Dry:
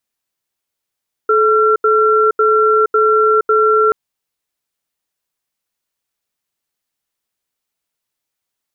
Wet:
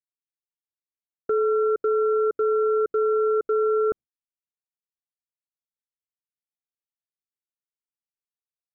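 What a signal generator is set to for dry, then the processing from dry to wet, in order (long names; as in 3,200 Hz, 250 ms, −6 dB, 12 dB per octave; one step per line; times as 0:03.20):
tone pair in a cadence 432 Hz, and 1,360 Hz, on 0.47 s, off 0.08 s, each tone −11.5 dBFS 2.63 s
moving average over 47 samples
brickwall limiter −16.5 dBFS
noise gate with hold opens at −22 dBFS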